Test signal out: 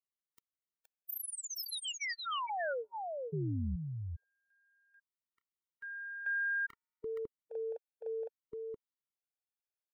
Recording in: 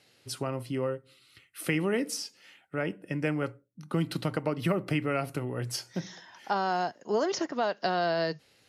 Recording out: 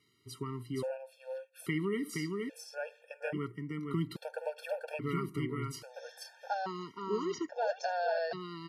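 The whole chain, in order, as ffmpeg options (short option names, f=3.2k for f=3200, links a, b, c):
-af "equalizer=f=6.9k:t=o:w=2:g=-4,aecho=1:1:470:0.668,afftfilt=real='re*gt(sin(2*PI*0.6*pts/sr)*(1-2*mod(floor(b*sr/1024/460),2)),0)':imag='im*gt(sin(2*PI*0.6*pts/sr)*(1-2*mod(floor(b*sr/1024/460),2)),0)':win_size=1024:overlap=0.75,volume=-4.5dB"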